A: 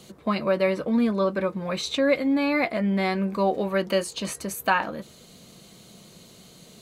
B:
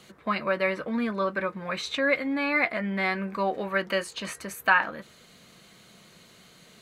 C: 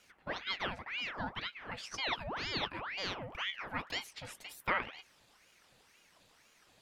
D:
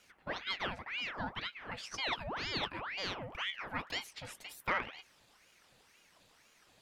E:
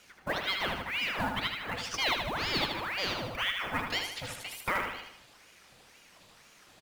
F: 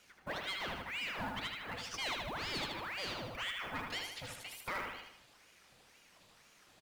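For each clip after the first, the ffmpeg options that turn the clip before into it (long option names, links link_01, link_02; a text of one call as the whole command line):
ffmpeg -i in.wav -af "equalizer=frequency=1700:width_type=o:width=1.6:gain=12,volume=-7dB" out.wav
ffmpeg -i in.wav -af "aeval=exprs='val(0)*sin(2*PI*1500*n/s+1500*0.8/2*sin(2*PI*2*n/s))':channel_layout=same,volume=-9dB" out.wav
ffmpeg -i in.wav -af "asoftclip=type=tanh:threshold=-19.5dB" out.wav
ffmpeg -i in.wav -filter_complex "[0:a]alimiter=level_in=2dB:limit=-24dB:level=0:latency=1:release=472,volume=-2dB,acrusher=bits=5:mode=log:mix=0:aa=0.000001,asplit=2[link_01][link_02];[link_02]aecho=0:1:77|154|231|308|385|462:0.531|0.26|0.127|0.0625|0.0306|0.015[link_03];[link_01][link_03]amix=inputs=2:normalize=0,volume=6.5dB" out.wav
ffmpeg -i in.wav -af "asoftclip=type=tanh:threshold=-26dB,volume=-6dB" out.wav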